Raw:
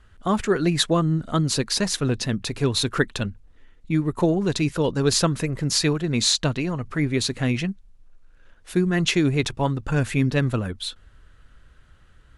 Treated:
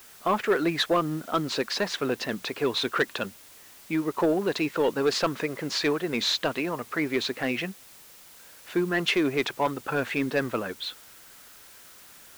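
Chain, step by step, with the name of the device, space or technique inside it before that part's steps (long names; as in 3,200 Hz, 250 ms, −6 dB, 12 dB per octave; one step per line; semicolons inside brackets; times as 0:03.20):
tape answering machine (band-pass filter 390–3,000 Hz; soft clipping −18 dBFS, distortion −15 dB; tape wow and flutter; white noise bed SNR 22 dB)
level +3 dB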